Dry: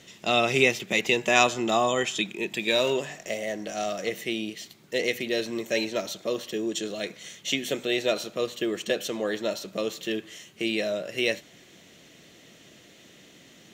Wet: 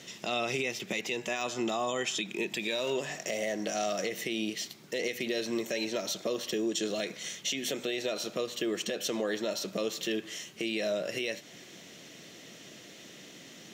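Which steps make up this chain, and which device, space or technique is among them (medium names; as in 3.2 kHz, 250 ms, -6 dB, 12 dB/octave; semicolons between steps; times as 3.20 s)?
broadcast voice chain (high-pass 120 Hz; de-esser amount 45%; compression 4:1, threshold -30 dBFS, peak gain reduction 12.5 dB; peaking EQ 5.4 kHz +4.5 dB 0.38 oct; peak limiter -24 dBFS, peak gain reduction 7.5 dB); trim +2.5 dB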